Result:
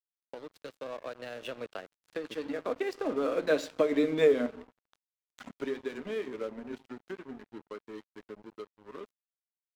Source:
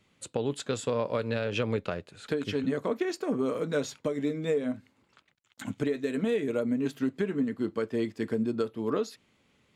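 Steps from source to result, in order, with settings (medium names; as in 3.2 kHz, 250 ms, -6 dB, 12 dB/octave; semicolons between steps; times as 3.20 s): Doppler pass-by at 4.10 s, 24 m/s, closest 15 m; high-pass 96 Hz 12 dB/octave; three-band isolator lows -18 dB, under 270 Hz, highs -14 dB, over 5.1 kHz; on a send at -15.5 dB: reverberation RT60 0.95 s, pre-delay 26 ms; on the sum: crossover distortion -52.5 dBFS; trim +7 dB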